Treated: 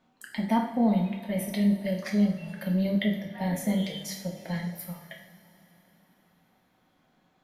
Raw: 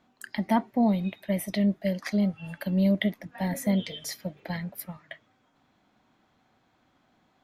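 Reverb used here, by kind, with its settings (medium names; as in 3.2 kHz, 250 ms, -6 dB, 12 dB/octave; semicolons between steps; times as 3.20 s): two-slope reverb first 0.58 s, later 4.2 s, from -18 dB, DRR 0 dB; trim -4 dB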